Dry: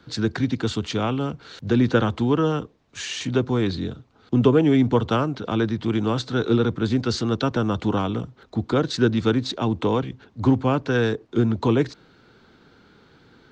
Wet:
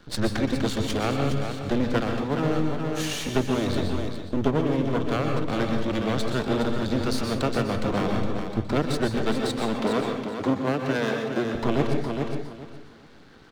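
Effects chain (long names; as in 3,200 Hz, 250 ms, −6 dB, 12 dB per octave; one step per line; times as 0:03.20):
half-wave rectification
0:09.17–0:11.55: high-pass filter 180 Hz 12 dB per octave
repeating echo 413 ms, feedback 21%, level −8.5 dB
convolution reverb RT60 0.45 s, pre-delay 116 ms, DRR 4.5 dB
speech leveller within 4 dB 0.5 s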